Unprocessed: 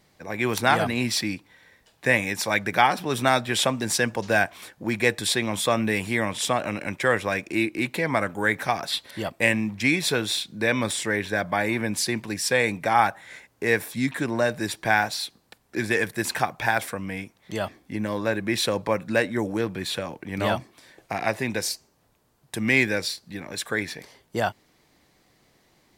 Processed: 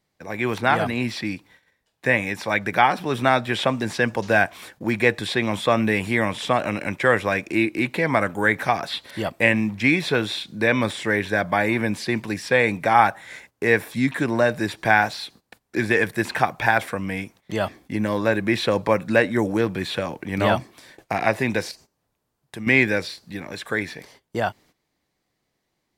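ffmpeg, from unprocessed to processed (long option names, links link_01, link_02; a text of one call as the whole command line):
ffmpeg -i in.wav -filter_complex "[0:a]asettb=1/sr,asplit=3[link_01][link_02][link_03];[link_01]atrim=end=21.714[link_04];[link_02]atrim=start=21.71:end=22.67,asetpts=PTS-STARTPTS,afade=type=in:duration=0.004:curve=qsin,afade=type=out:start_time=0.956:duration=0.004:curve=qsin,acompressor=threshold=-39dB:ratio=2:attack=3.2:release=140:knee=1:detection=peak[link_05];[link_03]atrim=start=22.666[link_06];[link_04][link_05]acrossfade=duration=0.004:curve1=hsin:curve2=qsin[link_07];[link_07][link_06]acrossfade=duration=0.004:curve1=qsin:curve2=hsin,acrossover=split=3500[link_08][link_09];[link_09]acompressor=threshold=-44dB:ratio=4:attack=1:release=60[link_10];[link_08][link_10]amix=inputs=2:normalize=0,agate=range=-14dB:threshold=-52dB:ratio=16:detection=peak,dynaudnorm=framelen=390:gausssize=17:maxgain=5.5dB,volume=1dB" out.wav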